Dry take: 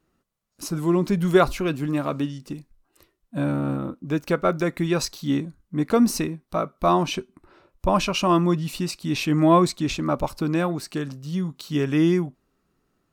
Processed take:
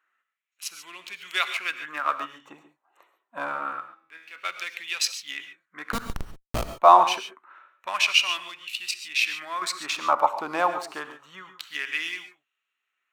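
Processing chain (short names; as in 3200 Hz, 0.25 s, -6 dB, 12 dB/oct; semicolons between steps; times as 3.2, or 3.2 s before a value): Wiener smoothing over 9 samples; 3.8–4.36 resonator 81 Hz, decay 0.84 s, harmonics all, mix 90%; 8.91–9.62 compressor 6:1, threshold -22 dBFS, peak gain reduction 10 dB; LFO high-pass sine 0.26 Hz 810–2800 Hz; 5.92–6.75 Schmitt trigger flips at -19.5 dBFS; non-linear reverb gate 0.16 s rising, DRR 9.5 dB; gain +2.5 dB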